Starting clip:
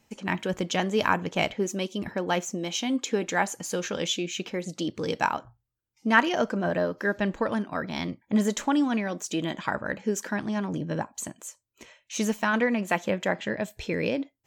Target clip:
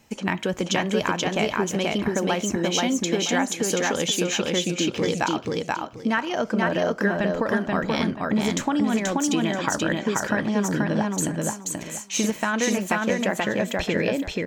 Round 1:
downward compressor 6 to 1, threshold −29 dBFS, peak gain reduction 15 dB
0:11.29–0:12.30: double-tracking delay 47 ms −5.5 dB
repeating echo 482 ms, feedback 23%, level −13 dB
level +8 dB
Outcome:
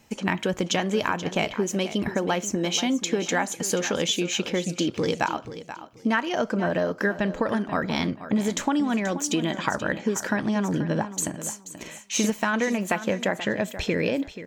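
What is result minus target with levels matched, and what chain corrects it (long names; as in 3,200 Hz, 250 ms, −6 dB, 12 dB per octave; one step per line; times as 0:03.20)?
echo-to-direct −11 dB
downward compressor 6 to 1, threshold −29 dBFS, peak gain reduction 15 dB
0:11.29–0:12.30: double-tracking delay 47 ms −5.5 dB
repeating echo 482 ms, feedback 23%, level −2 dB
level +8 dB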